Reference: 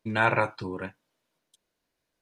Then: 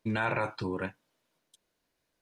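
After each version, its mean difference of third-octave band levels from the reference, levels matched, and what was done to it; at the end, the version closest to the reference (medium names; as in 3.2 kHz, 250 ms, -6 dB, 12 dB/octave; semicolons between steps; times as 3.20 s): 3.5 dB: peak limiter -18 dBFS, peak gain reduction 10 dB; trim +1 dB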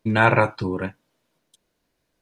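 1.5 dB: bass shelf 440 Hz +5.5 dB; trim +5 dB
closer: second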